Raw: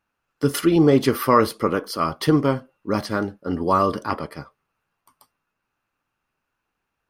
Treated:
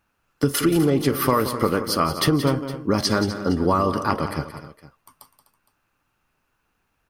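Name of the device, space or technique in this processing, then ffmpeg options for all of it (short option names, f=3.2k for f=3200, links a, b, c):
ASMR close-microphone chain: -filter_complex "[0:a]asettb=1/sr,asplit=3[a][b][c];[a]atrim=end=2.984[d];[b]atrim=start=2.98:end=3.49,asetpts=PTS-STARTPTS,afade=t=in:d=0.004:c=qsin,afade=t=out:st=0.506:d=0.004:c=qsin,equalizer=f=5.6k:w=0.84:g=9.5[e];[c]atrim=start=3.486[f];[d][e]acrossfade=d=0.004:c1=hsin:c2=qsin[g];[g][f]acrossfade=d=0.004:c1=qsin:c2=hsin,lowshelf=f=140:g=6,acompressor=threshold=-22dB:ratio=6,highshelf=f=6.9k:g=4,aecho=1:1:177|251|463:0.266|0.188|0.112,volume=5.5dB"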